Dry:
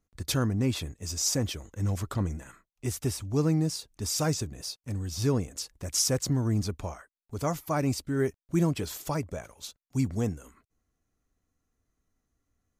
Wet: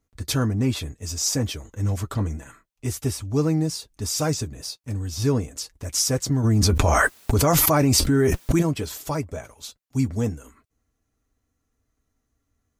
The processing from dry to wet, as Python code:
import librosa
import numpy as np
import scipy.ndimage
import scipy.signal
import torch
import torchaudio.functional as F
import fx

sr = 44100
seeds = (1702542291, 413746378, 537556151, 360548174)

y = fx.notch_comb(x, sr, f0_hz=180.0)
y = fx.env_flatten(y, sr, amount_pct=100, at=(6.43, 8.61), fade=0.02)
y = y * 10.0 ** (5.0 / 20.0)